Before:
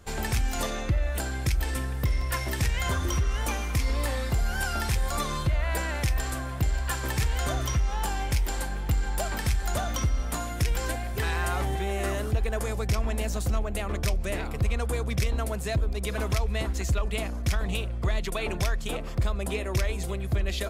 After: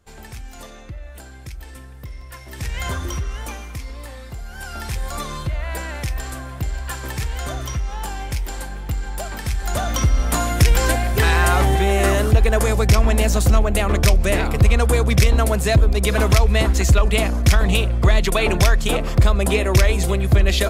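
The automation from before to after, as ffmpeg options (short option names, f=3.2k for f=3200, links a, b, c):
-af "volume=21.5dB,afade=t=in:st=2.47:d=0.36:silence=0.266073,afade=t=out:st=2.83:d=1.1:silence=0.334965,afade=t=in:st=4.5:d=0.51:silence=0.398107,afade=t=in:st=9.44:d=1.07:silence=0.281838"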